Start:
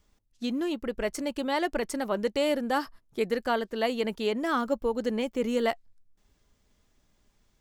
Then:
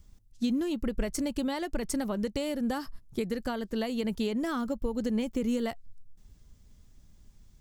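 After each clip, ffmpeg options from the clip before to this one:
ffmpeg -i in.wav -af "acompressor=threshold=-30dB:ratio=6,bass=frequency=250:gain=15,treble=frequency=4000:gain=7,volume=-1.5dB" out.wav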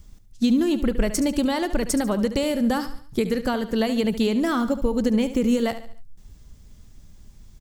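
ffmpeg -i in.wav -af "aecho=1:1:72|144|216|288:0.237|0.0996|0.0418|0.0176,volume=8.5dB" out.wav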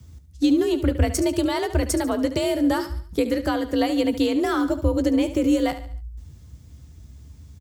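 ffmpeg -i in.wav -filter_complex "[0:a]afreqshift=53,asplit=2[link_01][link_02];[link_02]adelay=14,volume=-13dB[link_03];[link_01][link_03]amix=inputs=2:normalize=0" out.wav

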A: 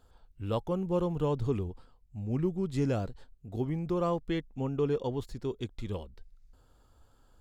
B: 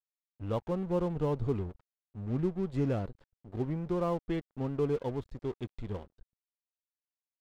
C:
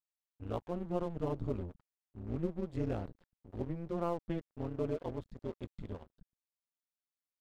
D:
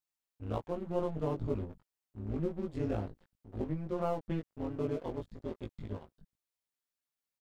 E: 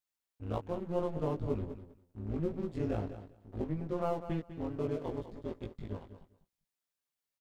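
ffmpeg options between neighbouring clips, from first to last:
ffmpeg -i in.wav -af "lowpass=frequency=1500:poles=1,aeval=exprs='sgn(val(0))*max(abs(val(0))-0.00447,0)':channel_layout=same" out.wav
ffmpeg -i in.wav -af "tremolo=f=170:d=0.919,volume=-1.5dB" out.wav
ffmpeg -i in.wav -filter_complex "[0:a]asplit=2[link_01][link_02];[link_02]adelay=19,volume=-2.5dB[link_03];[link_01][link_03]amix=inputs=2:normalize=0" out.wav
ffmpeg -i in.wav -af "aecho=1:1:199|398:0.251|0.0402" out.wav

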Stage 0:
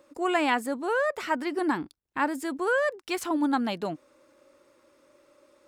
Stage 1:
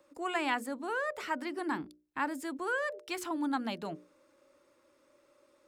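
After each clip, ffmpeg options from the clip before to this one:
ffmpeg -i in.wav -filter_complex "[0:a]bandreject=frequency=60:width_type=h:width=6,bandreject=frequency=120:width_type=h:width=6,bandreject=frequency=180:width_type=h:width=6,bandreject=frequency=240:width_type=h:width=6,bandreject=frequency=300:width_type=h:width=6,bandreject=frequency=360:width_type=h:width=6,bandreject=frequency=420:width_type=h:width=6,bandreject=frequency=480:width_type=h:width=6,bandreject=frequency=540:width_type=h:width=6,bandreject=frequency=600:width_type=h:width=6,acrossover=split=340|680|2100[link_01][link_02][link_03][link_04];[link_02]alimiter=level_in=11dB:limit=-24dB:level=0:latency=1,volume=-11dB[link_05];[link_01][link_05][link_03][link_04]amix=inputs=4:normalize=0,volume=-5.5dB" out.wav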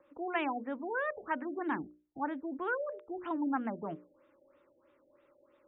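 ffmpeg -i in.wav -af "afftfilt=real='re*lt(b*sr/1024,800*pow(3900/800,0.5+0.5*sin(2*PI*3.1*pts/sr)))':imag='im*lt(b*sr/1024,800*pow(3900/800,0.5+0.5*sin(2*PI*3.1*pts/sr)))':win_size=1024:overlap=0.75" out.wav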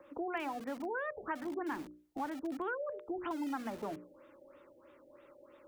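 ffmpeg -i in.wav -filter_complex "[0:a]acrossover=split=170[link_01][link_02];[link_01]aeval=exprs='(mod(750*val(0)+1,2)-1)/750':channel_layout=same[link_03];[link_02]acompressor=threshold=-45dB:ratio=4[link_04];[link_03][link_04]amix=inputs=2:normalize=0,volume=7.5dB" out.wav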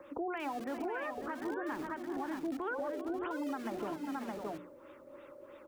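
ffmpeg -i in.wav -filter_complex "[0:a]asplit=2[link_01][link_02];[link_02]aecho=0:1:396|542|619:0.141|0.251|0.501[link_03];[link_01][link_03]amix=inputs=2:normalize=0,alimiter=level_in=10.5dB:limit=-24dB:level=0:latency=1:release=214,volume=-10.5dB,volume=5dB" out.wav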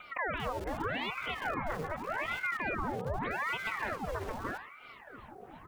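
ffmpeg -i in.wav -af "aeval=exprs='val(0)*sin(2*PI*980*n/s+980*0.85/0.83*sin(2*PI*0.83*n/s))':channel_layout=same,volume=5.5dB" out.wav

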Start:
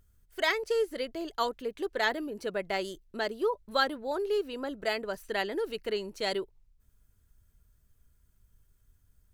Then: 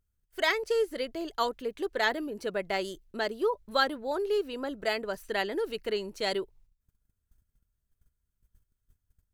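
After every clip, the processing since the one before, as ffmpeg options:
ffmpeg -i in.wav -af "agate=range=-15dB:threshold=-59dB:ratio=16:detection=peak,volume=1dB" out.wav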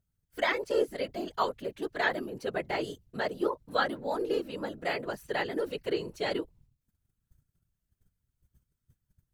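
ffmpeg -i in.wav -filter_complex "[0:a]acrossover=split=3500[link_01][link_02];[link_02]acompressor=threshold=-45dB:ratio=4:attack=1:release=60[link_03];[link_01][link_03]amix=inputs=2:normalize=0,afftfilt=real='hypot(re,im)*cos(2*PI*random(0))':imag='hypot(re,im)*sin(2*PI*random(1))':win_size=512:overlap=0.75,volume=5dB" out.wav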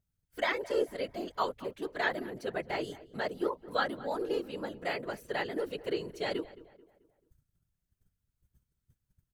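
ffmpeg -i in.wav -filter_complex "[0:a]asplit=2[link_01][link_02];[link_02]adelay=218,lowpass=frequency=2300:poles=1,volume=-18dB,asplit=2[link_03][link_04];[link_04]adelay=218,lowpass=frequency=2300:poles=1,volume=0.44,asplit=2[link_05][link_06];[link_06]adelay=218,lowpass=frequency=2300:poles=1,volume=0.44,asplit=2[link_07][link_08];[link_08]adelay=218,lowpass=frequency=2300:poles=1,volume=0.44[link_09];[link_01][link_03][link_05][link_07][link_09]amix=inputs=5:normalize=0,volume=-2.5dB" out.wav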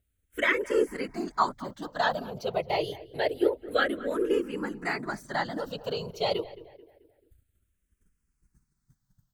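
ffmpeg -i in.wav -filter_complex "[0:a]asplit=2[link_01][link_02];[link_02]afreqshift=-0.27[link_03];[link_01][link_03]amix=inputs=2:normalize=1,volume=8.5dB" out.wav

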